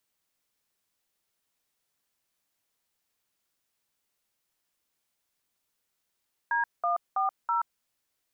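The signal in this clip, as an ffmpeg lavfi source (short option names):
-f lavfi -i "aevalsrc='0.0473*clip(min(mod(t,0.326),0.129-mod(t,0.326))/0.002,0,1)*(eq(floor(t/0.326),0)*(sin(2*PI*941*mod(t,0.326))+sin(2*PI*1633*mod(t,0.326)))+eq(floor(t/0.326),1)*(sin(2*PI*697*mod(t,0.326))+sin(2*PI*1209*mod(t,0.326)))+eq(floor(t/0.326),2)*(sin(2*PI*770*mod(t,0.326))+sin(2*PI*1209*mod(t,0.326)))+eq(floor(t/0.326),3)*(sin(2*PI*941*mod(t,0.326))+sin(2*PI*1336*mod(t,0.326))))':d=1.304:s=44100"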